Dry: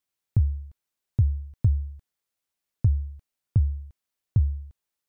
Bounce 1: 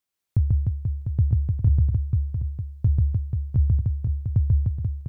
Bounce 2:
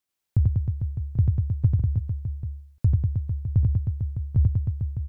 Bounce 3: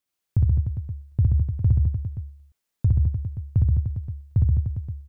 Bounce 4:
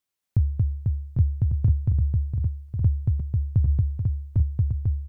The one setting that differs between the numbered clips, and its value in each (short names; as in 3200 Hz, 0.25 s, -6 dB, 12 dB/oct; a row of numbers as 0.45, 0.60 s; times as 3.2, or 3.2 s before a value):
reverse bouncing-ball echo, first gap: 140, 90, 60, 230 ms